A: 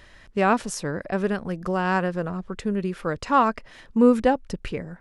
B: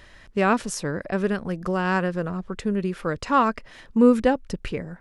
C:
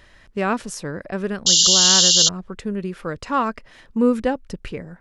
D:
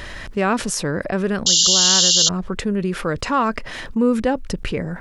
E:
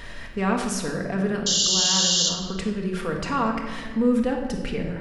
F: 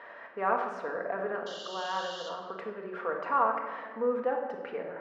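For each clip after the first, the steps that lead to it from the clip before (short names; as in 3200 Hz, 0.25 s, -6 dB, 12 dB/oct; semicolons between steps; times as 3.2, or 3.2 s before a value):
dynamic EQ 780 Hz, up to -4 dB, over -36 dBFS, Q 2.1; gain +1 dB
painted sound noise, 1.46–2.29, 2800–7400 Hz -13 dBFS; gain -1.5 dB
fast leveller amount 50%; gain -1 dB
shoebox room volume 1300 m³, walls mixed, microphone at 1.7 m; gain -8 dB
Butterworth band-pass 870 Hz, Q 0.86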